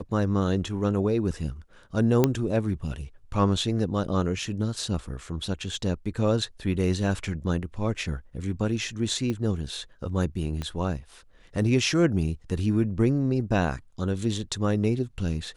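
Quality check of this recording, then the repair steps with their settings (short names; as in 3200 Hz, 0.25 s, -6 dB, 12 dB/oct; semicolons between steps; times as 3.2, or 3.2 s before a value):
2.24 pop -7 dBFS
9.3 pop -18 dBFS
10.62 pop -19 dBFS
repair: de-click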